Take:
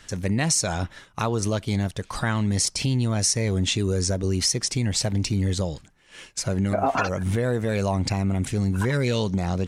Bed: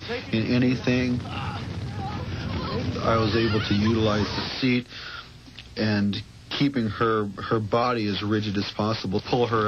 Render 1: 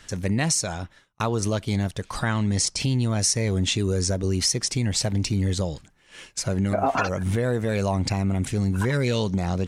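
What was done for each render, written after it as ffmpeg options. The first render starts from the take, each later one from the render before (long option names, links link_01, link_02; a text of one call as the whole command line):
ffmpeg -i in.wav -filter_complex "[0:a]asettb=1/sr,asplit=3[link_01][link_02][link_03];[link_01]atrim=end=2.254[link_04];[link_02]atrim=start=2.25:end=2.8,asetpts=PTS-STARTPTS,afade=type=in:duration=0.004:curve=qsin,afade=type=out:start_time=0.546:duration=0.004:curve=qsin,lowpass=frequency=9700:width=0.5412,lowpass=frequency=9700:width=1.3066[link_05];[link_03]atrim=start=2.796[link_06];[link_04][link_05]acrossfade=duration=0.004:curve1=hsin:curve2=qsin[link_07];[link_07][link_06]acrossfade=duration=0.004:curve1=qsin:curve2=hsin,asplit=2[link_08][link_09];[link_08]atrim=end=1.2,asetpts=PTS-STARTPTS,afade=type=out:start_time=0.45:duration=0.75[link_10];[link_09]atrim=start=1.2,asetpts=PTS-STARTPTS,afade=type=in:duration=0.004:curve=hsin[link_11];[link_10][link_11]concat=n=2:v=0:a=1" out.wav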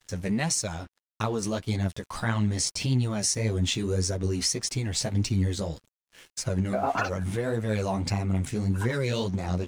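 ffmpeg -i in.wav -af "flanger=delay=7.2:depth=8.6:regen=9:speed=1.7:shape=triangular,aeval=exprs='sgn(val(0))*max(abs(val(0))-0.00316,0)':channel_layout=same" out.wav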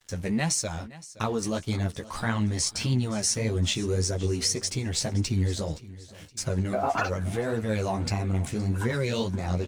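ffmpeg -i in.wav -filter_complex "[0:a]asplit=2[link_01][link_02];[link_02]adelay=13,volume=-11dB[link_03];[link_01][link_03]amix=inputs=2:normalize=0,aecho=1:1:519|1038|1557:0.119|0.0499|0.021" out.wav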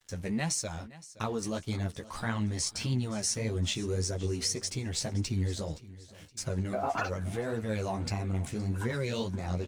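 ffmpeg -i in.wav -af "volume=-5dB" out.wav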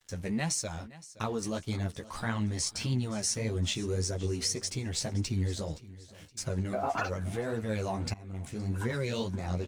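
ffmpeg -i in.wav -filter_complex "[0:a]asplit=2[link_01][link_02];[link_01]atrim=end=8.14,asetpts=PTS-STARTPTS,afade=type=out:start_time=8.136:duration=0.004:curve=hsin:silence=0.1[link_03];[link_02]atrim=start=8.14,asetpts=PTS-STARTPTS,afade=type=in:duration=0.61:silence=0.1[link_04];[link_03][link_04]concat=n=2:v=0:a=1" out.wav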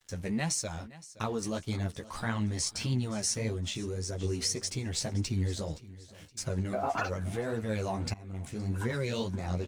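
ffmpeg -i in.wav -filter_complex "[0:a]asettb=1/sr,asplit=3[link_01][link_02][link_03];[link_01]atrim=end=3.524[link_04];[link_02]atrim=start=3.52:end=4.21,asetpts=PTS-STARTPTS,afade=type=in:duration=0.004:curve=qsin,afade=type=out:start_time=0.686:duration=0.004:curve=qsin,acompressor=threshold=-31dB:ratio=6:attack=3.2:release=140:knee=1:detection=peak[link_05];[link_03]atrim=start=4.206[link_06];[link_04][link_05]acrossfade=duration=0.004:curve1=hsin:curve2=qsin[link_07];[link_07][link_06]acrossfade=duration=0.004:curve1=qsin:curve2=hsin" out.wav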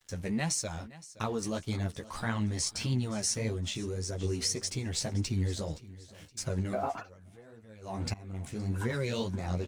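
ffmpeg -i in.wav -filter_complex "[0:a]asplit=3[link_01][link_02][link_03];[link_01]atrim=end=7.04,asetpts=PTS-STARTPTS,afade=type=out:start_time=6.83:duration=0.21:silence=0.105925[link_04];[link_02]atrim=start=7.04:end=7.81,asetpts=PTS-STARTPTS,volume=-19.5dB[link_05];[link_03]atrim=start=7.81,asetpts=PTS-STARTPTS,afade=type=in:duration=0.21:silence=0.105925[link_06];[link_04][link_05][link_06]concat=n=3:v=0:a=1" out.wav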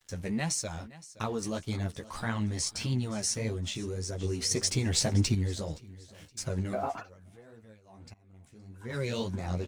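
ffmpeg -i in.wav -filter_complex "[0:a]asettb=1/sr,asplit=3[link_01][link_02][link_03];[link_01]atrim=end=4.514[link_04];[link_02]atrim=start=4.51:end=5.35,asetpts=PTS-STARTPTS,afade=type=in:duration=0.004:curve=qsin,afade=type=out:start_time=0.836:duration=0.004:curve=qsin,acontrast=52[link_05];[link_03]atrim=start=5.346[link_06];[link_04][link_05]acrossfade=duration=0.004:curve1=hsin:curve2=qsin[link_07];[link_07][link_06]acrossfade=duration=0.004:curve1=qsin:curve2=hsin,asplit=3[link_08][link_09][link_10];[link_08]atrim=end=7.83,asetpts=PTS-STARTPTS,afade=type=out:start_time=7.68:duration=0.15:silence=0.158489[link_11];[link_09]atrim=start=7.83:end=8.83,asetpts=PTS-STARTPTS,volume=-16dB[link_12];[link_10]atrim=start=8.83,asetpts=PTS-STARTPTS,afade=type=in:duration=0.15:silence=0.158489[link_13];[link_11][link_12][link_13]concat=n=3:v=0:a=1" out.wav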